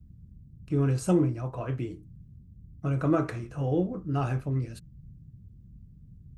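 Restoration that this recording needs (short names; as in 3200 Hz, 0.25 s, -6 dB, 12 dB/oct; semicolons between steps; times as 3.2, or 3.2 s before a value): noise print and reduce 22 dB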